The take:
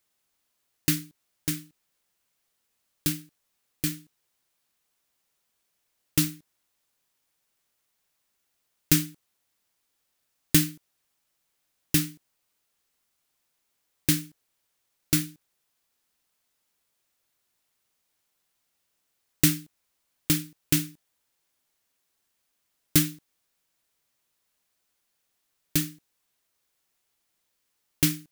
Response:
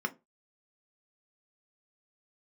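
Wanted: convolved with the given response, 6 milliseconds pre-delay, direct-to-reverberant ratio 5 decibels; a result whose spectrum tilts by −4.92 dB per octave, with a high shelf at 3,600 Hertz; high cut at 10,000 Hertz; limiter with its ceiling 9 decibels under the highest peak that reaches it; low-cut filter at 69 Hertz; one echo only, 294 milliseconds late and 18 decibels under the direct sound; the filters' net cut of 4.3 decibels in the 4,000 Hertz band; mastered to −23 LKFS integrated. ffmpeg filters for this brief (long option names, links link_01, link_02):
-filter_complex "[0:a]highpass=69,lowpass=10000,highshelf=frequency=3600:gain=-3.5,equalizer=frequency=4000:width_type=o:gain=-3,alimiter=limit=-16.5dB:level=0:latency=1,aecho=1:1:294:0.126,asplit=2[link_01][link_02];[1:a]atrim=start_sample=2205,adelay=6[link_03];[link_02][link_03]afir=irnorm=-1:irlink=0,volume=-10dB[link_04];[link_01][link_04]amix=inputs=2:normalize=0,volume=9dB"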